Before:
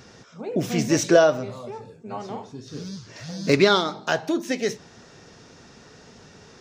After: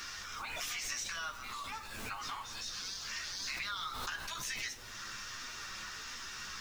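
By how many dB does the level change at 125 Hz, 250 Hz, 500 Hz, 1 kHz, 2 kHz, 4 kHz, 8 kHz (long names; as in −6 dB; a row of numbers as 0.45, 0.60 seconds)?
−24.0, −31.5, −34.5, −13.0, −9.5, −8.0, −6.0 decibels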